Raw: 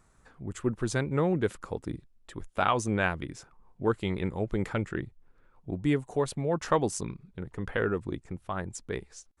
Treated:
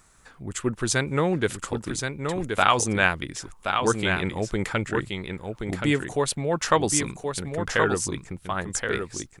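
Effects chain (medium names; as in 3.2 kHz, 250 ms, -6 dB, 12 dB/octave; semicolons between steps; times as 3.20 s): tilt shelf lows -5.5 dB, about 1.4 kHz; delay 1075 ms -5.5 dB; trim +7.5 dB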